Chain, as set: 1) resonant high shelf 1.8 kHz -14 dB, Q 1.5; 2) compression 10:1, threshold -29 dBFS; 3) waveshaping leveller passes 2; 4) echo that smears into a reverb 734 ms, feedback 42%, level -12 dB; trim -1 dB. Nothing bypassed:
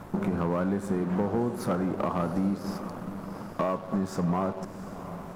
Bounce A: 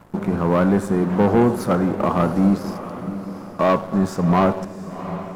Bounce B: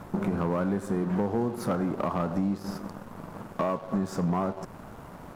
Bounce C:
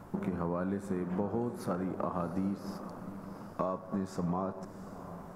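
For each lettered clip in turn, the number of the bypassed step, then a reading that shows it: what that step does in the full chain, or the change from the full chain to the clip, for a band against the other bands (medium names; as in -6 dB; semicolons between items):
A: 2, mean gain reduction 6.5 dB; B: 4, echo-to-direct -11.0 dB to none; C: 3, crest factor change +6.0 dB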